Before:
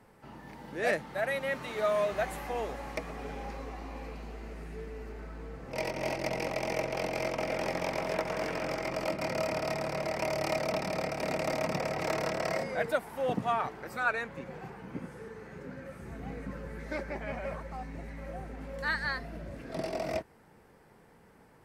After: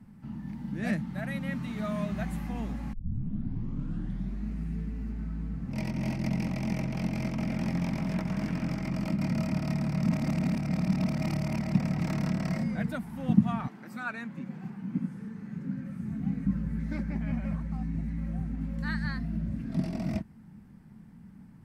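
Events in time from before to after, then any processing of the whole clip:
2.93 s: tape start 1.60 s
10.03–11.75 s: reverse
13.67–16.44 s: high-pass 310 Hz -> 100 Hz
whole clip: resonant low shelf 310 Hz +13.5 dB, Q 3; trim -5.5 dB

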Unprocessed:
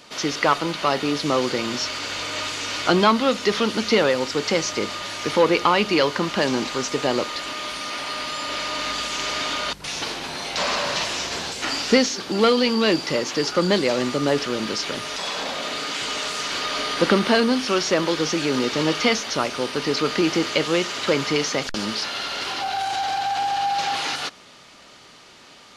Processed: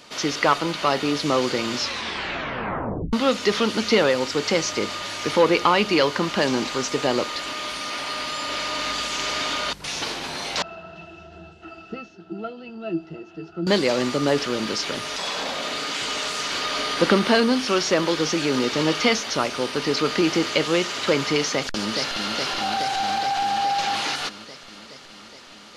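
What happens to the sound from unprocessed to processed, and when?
1.76 s: tape stop 1.37 s
10.62–13.67 s: pitch-class resonator E, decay 0.13 s
21.51–22.34 s: echo throw 420 ms, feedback 75%, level -5.5 dB

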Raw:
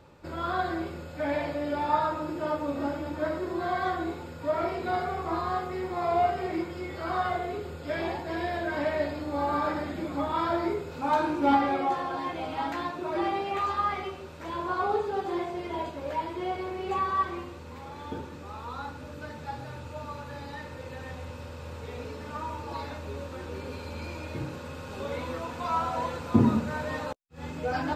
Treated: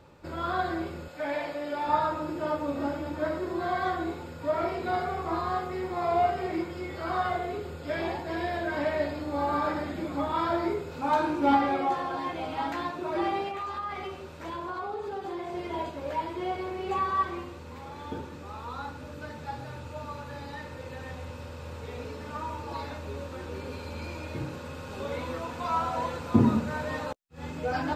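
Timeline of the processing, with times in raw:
1.08–1.87 s: high-pass 450 Hz 6 dB/octave
13.48–15.53 s: compression 4:1, threshold -32 dBFS

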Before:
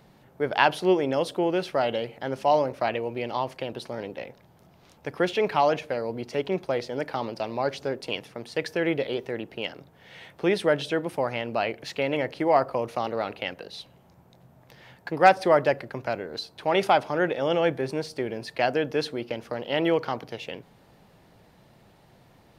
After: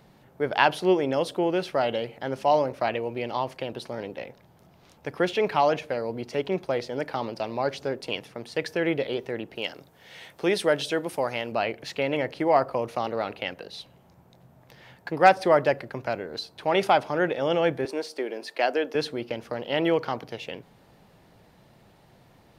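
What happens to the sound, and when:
9.55–11.52 s: tone controls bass -4 dB, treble +7 dB
17.85–18.95 s: high-pass 280 Hz 24 dB/octave

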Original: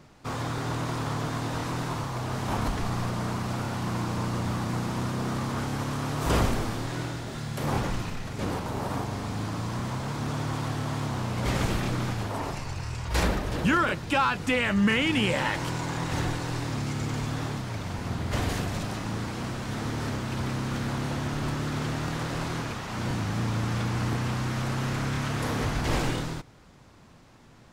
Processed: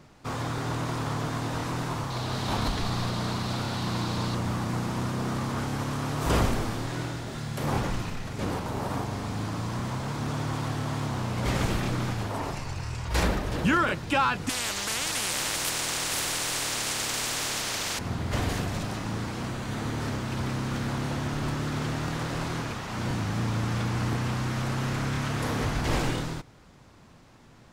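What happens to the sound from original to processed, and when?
2.10–4.35 s: peaking EQ 4 kHz +10 dB 0.68 oct
14.49–17.99 s: spectrum-flattening compressor 10:1
19.47–20.02 s: band-stop 5.3 kHz

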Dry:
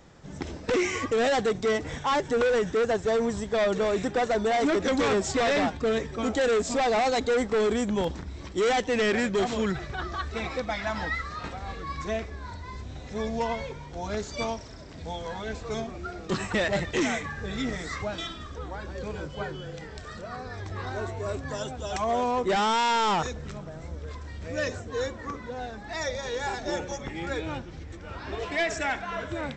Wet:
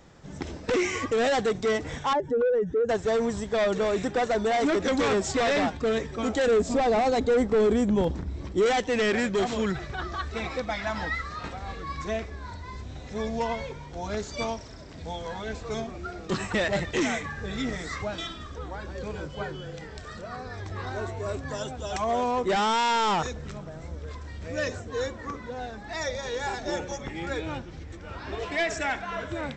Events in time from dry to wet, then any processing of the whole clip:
2.13–2.89 s: spectral contrast enhancement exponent 1.7
6.47–8.66 s: tilt shelf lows +5 dB, about 800 Hz

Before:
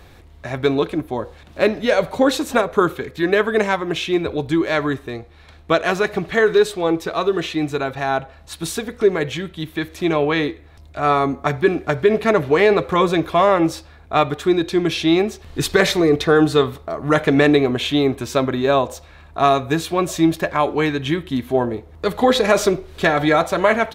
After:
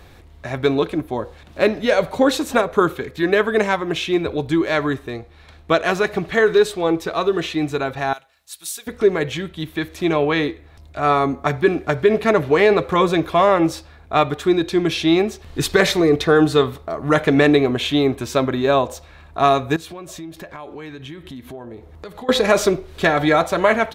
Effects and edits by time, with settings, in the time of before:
8.13–8.87 s: pre-emphasis filter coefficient 0.97
19.76–22.29 s: compression 5:1, threshold -33 dBFS

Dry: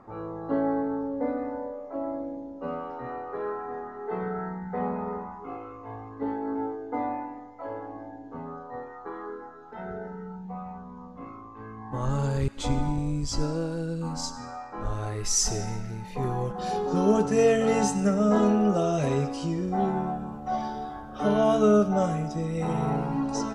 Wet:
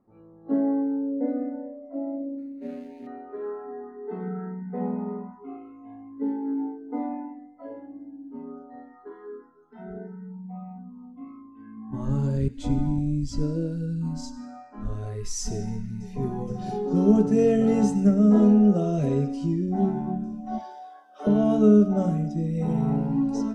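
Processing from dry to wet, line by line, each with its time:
2.38–3.07 s: median filter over 41 samples
15.53–16.25 s: echo throw 470 ms, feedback 85%, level -11 dB
20.58–21.27 s: high-pass 430 Hz 24 dB/octave
whole clip: de-hum 62.55 Hz, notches 38; spectral noise reduction 16 dB; FFT filter 110 Hz 0 dB, 220 Hz +7 dB, 1.1 kHz -9 dB

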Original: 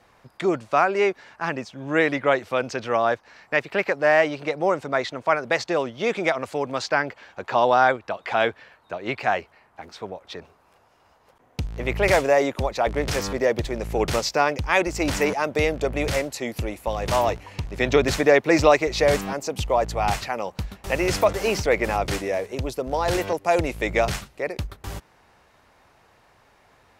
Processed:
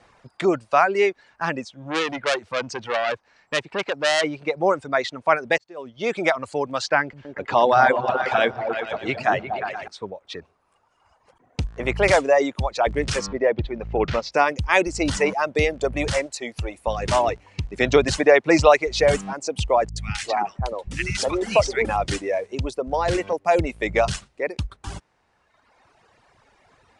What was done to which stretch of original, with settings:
1.76–4.24 s: transformer saturation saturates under 3.9 kHz
5.58–6.27 s: fade in
7.01–9.88 s: delay with an opening low-pass 118 ms, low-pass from 200 Hz, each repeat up 2 oct, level 0 dB
13.26–14.32 s: distance through air 230 m
16.26–16.74 s: peaking EQ 200 Hz -6 dB 1.9 oct
19.89–21.85 s: three bands offset in time lows, highs, mids 70/330 ms, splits 260/1300 Hz
22.71–24.05 s: peaking EQ 14 kHz -4.5 dB 2.8 oct
whole clip: reverb removal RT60 1.7 s; steep low-pass 10 kHz 72 dB/octave; trim +2.5 dB

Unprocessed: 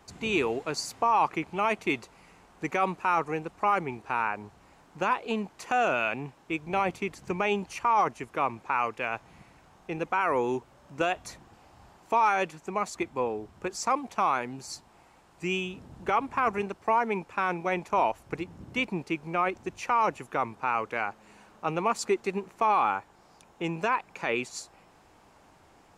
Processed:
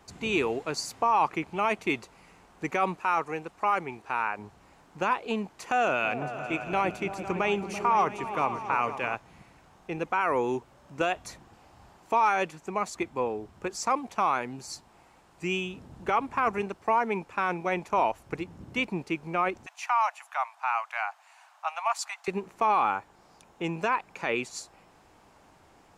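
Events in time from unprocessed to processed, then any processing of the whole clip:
2.97–4.39 s: bass shelf 350 Hz -6.5 dB
5.52–9.15 s: delay with an opening low-pass 168 ms, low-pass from 200 Hz, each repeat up 2 oct, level -6 dB
19.66–22.28 s: steep high-pass 660 Hz 72 dB/octave

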